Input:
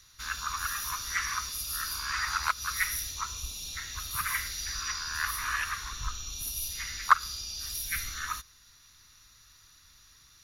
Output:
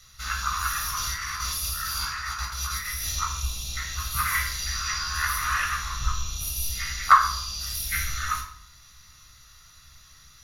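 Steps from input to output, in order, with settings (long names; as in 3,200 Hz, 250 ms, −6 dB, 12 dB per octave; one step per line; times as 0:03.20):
0:00.89–0:03.20: compressor whose output falls as the input rises −37 dBFS, ratio −1
convolution reverb RT60 0.65 s, pre-delay 15 ms, DRR 1 dB
level +1.5 dB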